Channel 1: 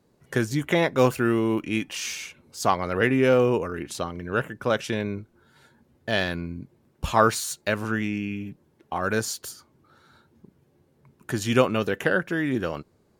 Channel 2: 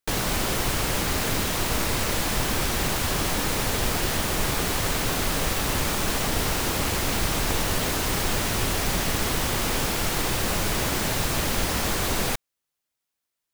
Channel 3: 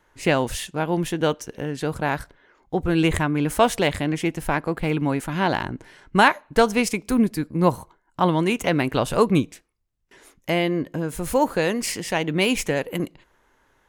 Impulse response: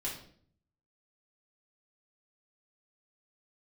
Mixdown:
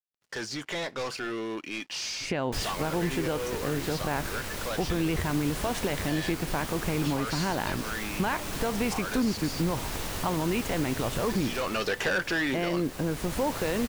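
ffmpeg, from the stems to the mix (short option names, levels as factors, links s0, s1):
-filter_complex "[0:a]equalizer=f=4800:t=o:w=0.72:g=14,asplit=2[s0][s1];[s1]highpass=f=720:p=1,volume=25.1,asoftclip=type=tanh:threshold=0.708[s2];[s0][s2]amix=inputs=2:normalize=0,lowpass=f=5100:p=1,volume=0.501,volume=0.251,afade=t=in:st=11.53:d=0.37:silence=0.375837,asplit=2[s3][s4];[1:a]adelay=2450,volume=0.398[s5];[2:a]highshelf=f=4500:g=-9.5,adelay=2050,volume=1.06[s6];[s4]apad=whole_len=704873[s7];[s5][s7]sidechaincompress=threshold=0.0251:ratio=8:attack=16:release=1110[s8];[s3][s6]amix=inputs=2:normalize=0,lowpass=11000,alimiter=limit=0.168:level=0:latency=1,volume=1[s9];[s8][s9]amix=inputs=2:normalize=0,aeval=exprs='sgn(val(0))*max(abs(val(0))-0.00133,0)':c=same,acompressor=threshold=0.0355:ratio=1.5"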